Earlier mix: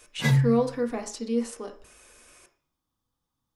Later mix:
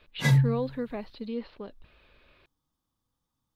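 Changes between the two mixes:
speech: add steep low-pass 4300 Hz 72 dB/oct; reverb: off

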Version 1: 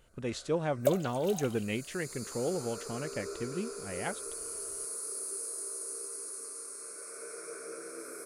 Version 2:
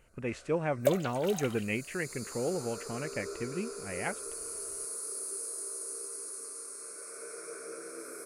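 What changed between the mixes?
speech: add resonant high shelf 3000 Hz -6.5 dB, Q 3; second sound: remove fixed phaser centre 660 Hz, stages 4

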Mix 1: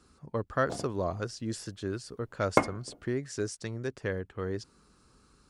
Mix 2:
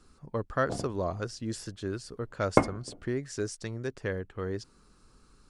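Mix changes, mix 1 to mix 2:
speech: remove HPF 52 Hz; background: add tilt -2 dB/oct

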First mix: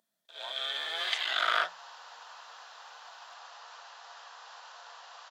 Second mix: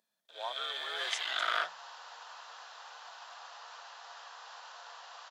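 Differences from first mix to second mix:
speech +7.0 dB; first sound -4.0 dB

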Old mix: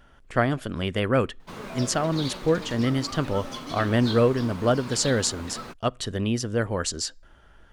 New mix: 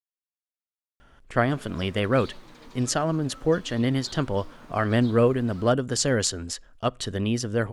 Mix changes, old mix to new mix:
speech: entry +1.00 s; background -11.5 dB

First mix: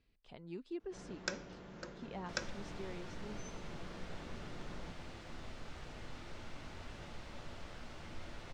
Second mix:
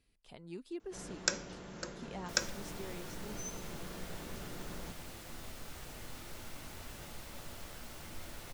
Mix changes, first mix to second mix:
first sound +3.5 dB; master: remove air absorption 130 m

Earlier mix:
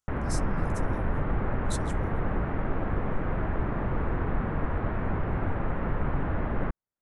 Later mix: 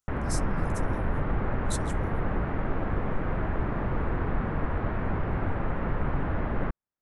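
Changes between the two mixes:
background: remove air absorption 75 m; master: add high shelf 9300 Hz +6.5 dB

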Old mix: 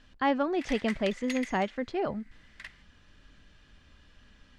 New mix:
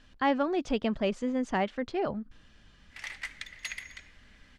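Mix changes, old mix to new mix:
background: entry +2.35 s; master: add high shelf 9200 Hz +5 dB

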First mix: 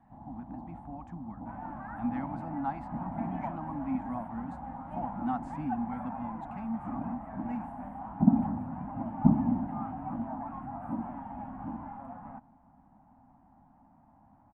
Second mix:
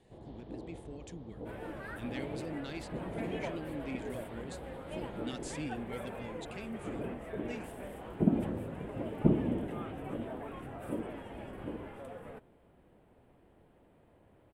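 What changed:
speech: add bell 860 Hz -14.5 dB 1.6 oct; master: remove EQ curve 120 Hz 0 dB, 260 Hz +8 dB, 430 Hz -27 dB, 800 Hz +13 dB, 3500 Hz -23 dB

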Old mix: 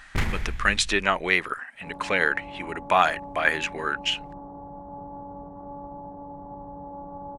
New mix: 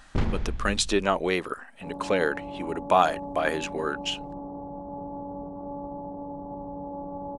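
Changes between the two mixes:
first sound: add air absorption 150 m; second sound: send on; master: add graphic EQ 250/500/2000 Hz +4/+4/-11 dB

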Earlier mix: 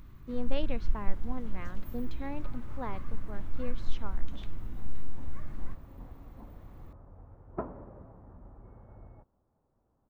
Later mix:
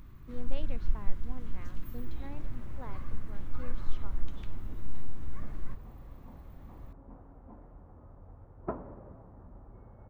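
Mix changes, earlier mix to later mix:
speech -8.5 dB; second sound: entry +1.10 s

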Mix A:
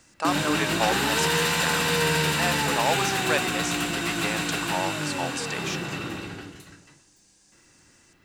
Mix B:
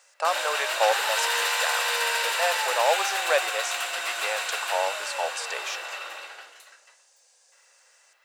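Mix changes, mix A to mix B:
speech: remove HPF 770 Hz 12 dB/oct; master: add elliptic high-pass 550 Hz, stop band 70 dB

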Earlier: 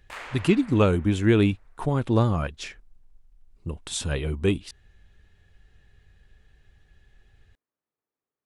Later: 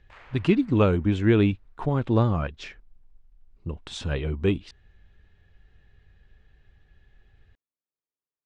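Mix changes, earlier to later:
background -10.5 dB; master: add air absorption 140 m

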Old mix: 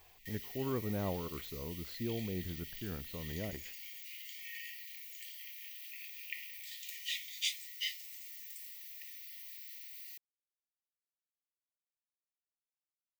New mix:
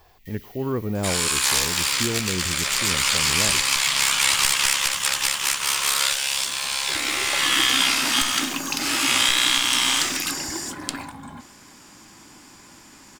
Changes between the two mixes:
speech +10.5 dB; second sound: unmuted

